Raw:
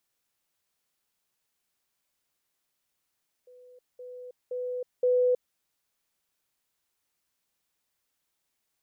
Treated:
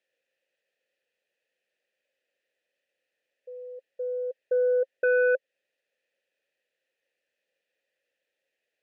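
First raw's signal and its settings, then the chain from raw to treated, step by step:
level staircase 498 Hz −50 dBFS, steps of 10 dB, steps 4, 0.32 s 0.20 s
in parallel at −1 dB: downward compressor, threshold −34 dBFS
on the sum: formant filter e
sine wavefolder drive 6 dB, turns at −19 dBFS

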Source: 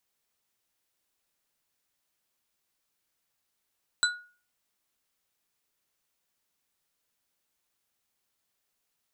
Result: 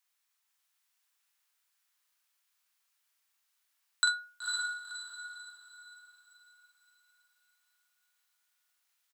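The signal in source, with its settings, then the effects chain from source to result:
struck glass bar, lowest mode 1,450 Hz, modes 3, decay 0.40 s, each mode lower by 0 dB, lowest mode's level −21 dB
Chebyshev high-pass filter 1,200 Hz, order 2
double-tracking delay 44 ms −5.5 dB
on a send: feedback delay with all-pass diffusion 506 ms, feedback 41%, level −3.5 dB

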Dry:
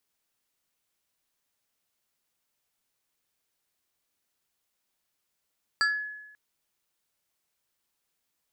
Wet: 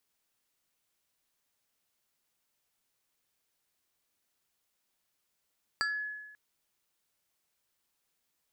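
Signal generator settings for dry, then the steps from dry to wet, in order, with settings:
two-operator FM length 0.54 s, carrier 1,700 Hz, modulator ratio 1.79, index 1.3, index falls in 0.34 s exponential, decay 1.01 s, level −19.5 dB
downward compressor, threshold −31 dBFS

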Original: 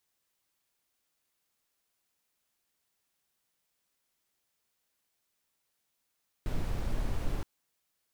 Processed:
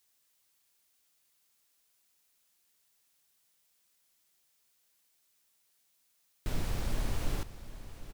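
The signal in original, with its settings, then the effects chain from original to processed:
noise brown, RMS −30 dBFS 0.97 s
high-shelf EQ 2,500 Hz +8 dB
single-tap delay 755 ms −14 dB

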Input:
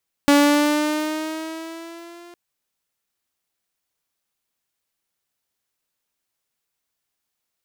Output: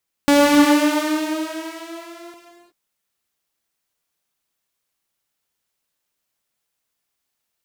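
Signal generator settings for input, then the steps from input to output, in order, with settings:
pitch glide with a swell saw, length 2.06 s, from 285 Hz, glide +3.5 semitones, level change −31 dB, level −8 dB
reverb whose tail is shaped and stops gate 390 ms flat, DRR 2 dB

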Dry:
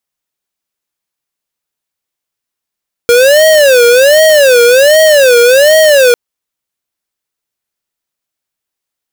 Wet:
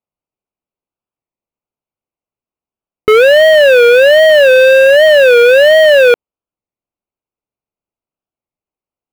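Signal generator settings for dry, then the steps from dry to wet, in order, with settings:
siren wail 474–633 Hz 1.3 per second square −5 dBFS 3.05 s
adaptive Wiener filter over 25 samples
high shelf with overshoot 4,000 Hz −13 dB, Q 1.5
wow of a warped record 33 1/3 rpm, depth 160 cents

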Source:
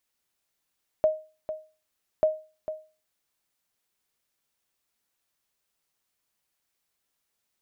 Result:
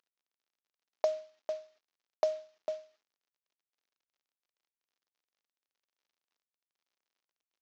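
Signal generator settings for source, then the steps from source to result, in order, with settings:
ping with an echo 624 Hz, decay 0.34 s, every 1.19 s, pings 2, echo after 0.45 s, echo −11.5 dB −14 dBFS
variable-slope delta modulation 32 kbit/s
high-pass filter 260 Hz 12 dB per octave
downward compressor, threshold −25 dBFS

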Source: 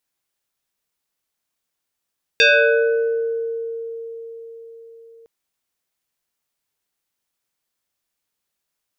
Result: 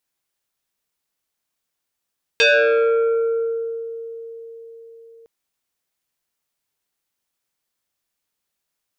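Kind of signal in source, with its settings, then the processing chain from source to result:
two-operator FM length 2.86 s, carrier 458 Hz, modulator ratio 2.27, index 3.8, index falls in 1.60 s exponential, decay 4.93 s, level −9 dB
dynamic equaliser 500 Hz, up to +4 dB, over −28 dBFS
saturating transformer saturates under 900 Hz

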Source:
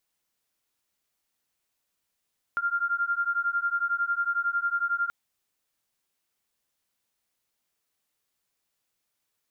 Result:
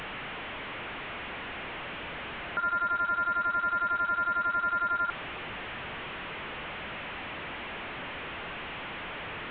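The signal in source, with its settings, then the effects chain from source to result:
two tones that beat 1,390 Hz, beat 11 Hz, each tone −27.5 dBFS 2.53 s
linear delta modulator 16 kbit/s, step −31.5 dBFS

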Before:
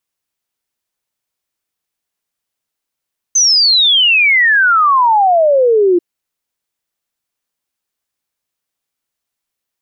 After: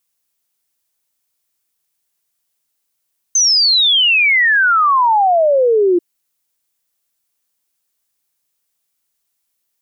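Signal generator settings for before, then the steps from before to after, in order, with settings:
exponential sine sweep 6,300 Hz → 340 Hz 2.64 s −7 dBFS
high-shelf EQ 5,000 Hz +10.5 dB
brickwall limiter −9 dBFS

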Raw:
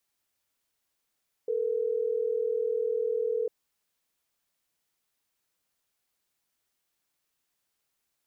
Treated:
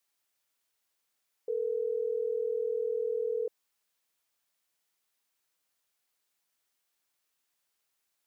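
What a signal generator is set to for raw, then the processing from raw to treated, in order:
call progress tone ringback tone, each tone −28.5 dBFS
low-shelf EQ 310 Hz −9 dB

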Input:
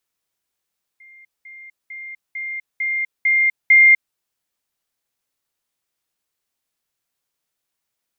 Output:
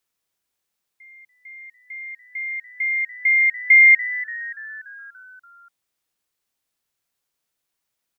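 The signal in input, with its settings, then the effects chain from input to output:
level staircase 2,110 Hz −43 dBFS, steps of 6 dB, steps 7, 0.25 s 0.20 s
echo with shifted repeats 289 ms, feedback 59%, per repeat −120 Hz, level −16 dB

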